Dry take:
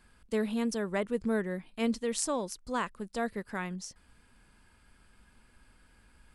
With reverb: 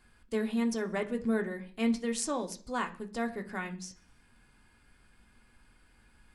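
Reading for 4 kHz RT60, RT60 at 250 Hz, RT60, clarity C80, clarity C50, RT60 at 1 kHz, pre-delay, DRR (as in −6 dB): 0.55 s, 0.55 s, 0.45 s, 20.0 dB, 15.5 dB, 0.40 s, 3 ms, 3.0 dB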